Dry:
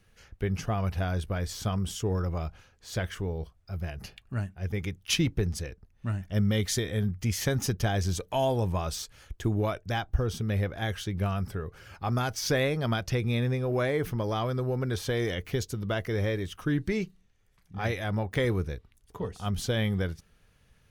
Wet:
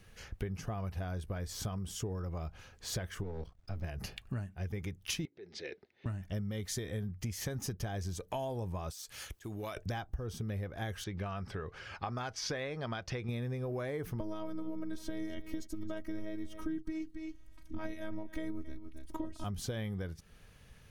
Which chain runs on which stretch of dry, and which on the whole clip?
0:03.23–0:03.84: gain on one half-wave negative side −12 dB + parametric band 12,000 Hz −15 dB 0.55 octaves
0:05.25–0:06.06: downward compressor 16 to 1, threshold −38 dBFS + loudspeaker in its box 370–4,800 Hz, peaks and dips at 380 Hz +10 dB, 1,100 Hz −9 dB, 2,100 Hz +7 dB, 3,800 Hz +6 dB
0:08.90–0:09.77: spectral tilt +2.5 dB per octave + volume swells 311 ms + downward compressor 10 to 1, threshold −40 dBFS
0:11.04–0:13.29: low-pass filter 4,800 Hz + low-shelf EQ 450 Hz −9 dB
0:14.20–0:19.44: low-shelf EQ 390 Hz +11.5 dB + phases set to zero 317 Hz + single-tap delay 272 ms −17.5 dB
whole clip: notch filter 1,400 Hz, Q 25; dynamic equaliser 3,100 Hz, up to −4 dB, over −49 dBFS, Q 1; downward compressor 8 to 1, threshold −40 dBFS; level +5 dB

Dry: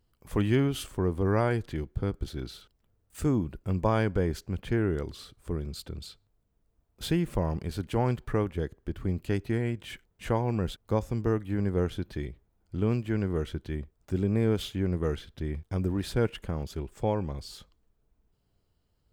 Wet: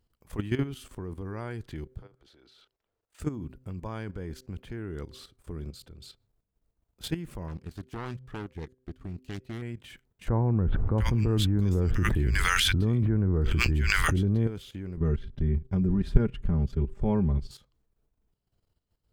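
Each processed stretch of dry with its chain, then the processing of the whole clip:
0:02.02–0:03.20: three-way crossover with the lows and the highs turned down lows −17 dB, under 340 Hz, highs −13 dB, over 6,000 Hz + downward compressor 10 to 1, threshold −46 dBFS
0:07.48–0:09.62: phase distortion by the signal itself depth 0.62 ms + parametric band 5,400 Hz +3 dB 1.8 octaves + expander for the loud parts, over −45 dBFS
0:10.28–0:14.47: low-shelf EQ 130 Hz +10.5 dB + multiband delay without the direct sound lows, highs 700 ms, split 1,600 Hz + envelope flattener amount 100%
0:14.97–0:17.51: RIAA equalisation playback + comb filter 5 ms, depth 66%
whole clip: hum removal 128.4 Hz, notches 4; dynamic equaliser 610 Hz, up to −5 dB, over −42 dBFS, Q 1.4; output level in coarse steps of 12 dB

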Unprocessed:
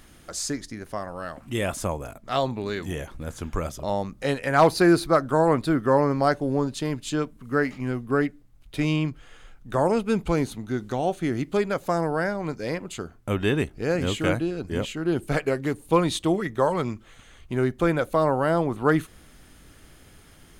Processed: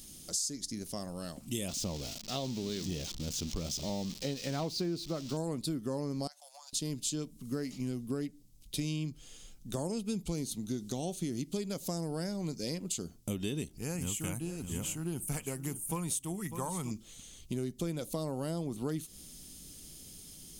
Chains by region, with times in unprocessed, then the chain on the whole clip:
0:01.68–0:05.37: spike at every zero crossing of −18.5 dBFS + high-frequency loss of the air 210 metres
0:06.27–0:06.73: Butterworth high-pass 660 Hz 72 dB per octave + noise gate −49 dBFS, range −7 dB + downward compressor 2.5 to 1, threshold −43 dBFS
0:13.77–0:16.91: drawn EQ curve 100 Hz 0 dB, 330 Hz −8 dB, 590 Hz −8 dB, 880 Hz +5 dB, 1,700 Hz +1 dB, 2,700 Hz −1 dB, 4,000 Hz −15 dB, 5,800 Hz −5 dB, 9,300 Hz +5 dB + single-tap delay 598 ms −15 dB
whole clip: drawn EQ curve 110 Hz 0 dB, 180 Hz +7 dB, 1,600 Hz −12 dB, 3,100 Hz +5 dB, 5,400 Hz +15 dB; downward compressor 6 to 1, threshold −26 dBFS; level −6 dB

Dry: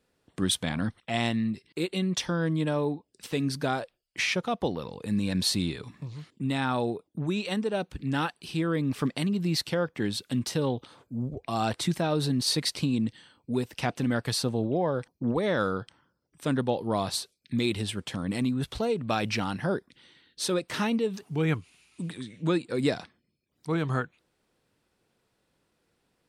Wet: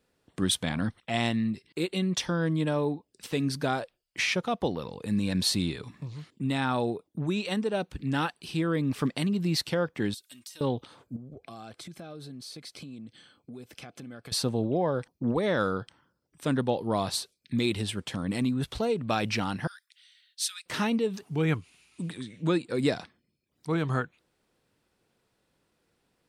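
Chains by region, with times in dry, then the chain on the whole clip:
0:10.14–0:10.61: first-order pre-emphasis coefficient 0.97 + comb filter 3.2 ms, depth 47% + downward compressor 4 to 1, threshold −42 dBFS
0:11.16–0:14.32: downward compressor, threshold −40 dBFS + notch comb filter 940 Hz
0:19.67–0:20.66: Bessel high-pass filter 2,500 Hz, order 8 + high-shelf EQ 6,900 Hz +5 dB
whole clip: no processing

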